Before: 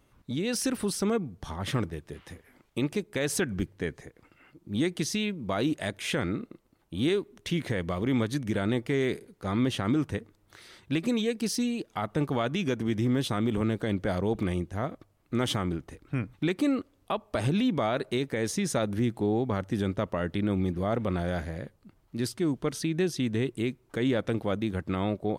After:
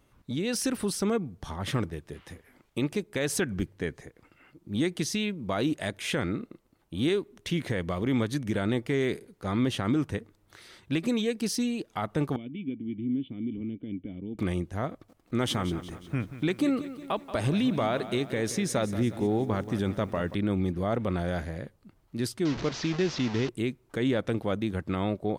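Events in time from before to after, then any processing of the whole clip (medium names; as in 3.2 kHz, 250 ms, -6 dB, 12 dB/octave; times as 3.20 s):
12.36–14.39 s: cascade formant filter i
14.90–20.35 s: bit-crushed delay 181 ms, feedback 55%, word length 9-bit, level -13 dB
22.45–23.49 s: one-bit delta coder 32 kbps, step -30 dBFS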